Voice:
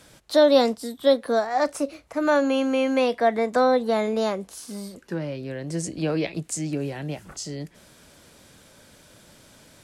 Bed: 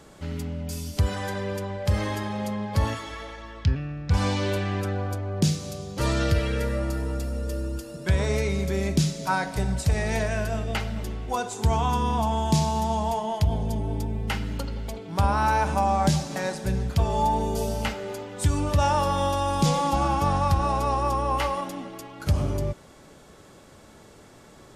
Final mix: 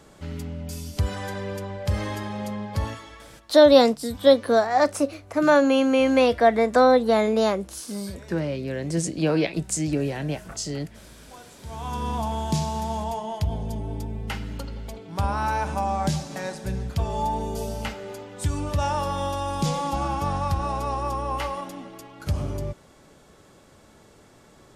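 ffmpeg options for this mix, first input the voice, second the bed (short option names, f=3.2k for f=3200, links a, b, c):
-filter_complex "[0:a]adelay=3200,volume=3dB[a];[1:a]volume=14.5dB,afade=t=out:st=2.58:d=0.93:silence=0.133352,afade=t=in:st=11.66:d=0.43:silence=0.158489[b];[a][b]amix=inputs=2:normalize=0"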